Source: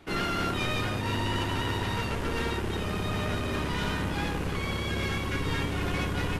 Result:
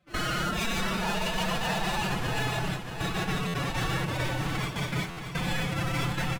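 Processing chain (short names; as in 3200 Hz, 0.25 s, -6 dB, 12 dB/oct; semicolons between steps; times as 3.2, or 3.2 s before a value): tracing distortion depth 0.093 ms; gate with hold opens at -20 dBFS; dynamic EQ 370 Hz, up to -5 dB, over -44 dBFS, Q 0.96; in parallel at -1 dB: compressor, threshold -38 dBFS, peak gain reduction 12 dB; on the sum: formant-preserving pitch shift +10.5 st; on a send: feedback echo 0.63 s, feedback 44%, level -8 dB; on the sum: stuck buffer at 3.47/5.1, samples 512, times 5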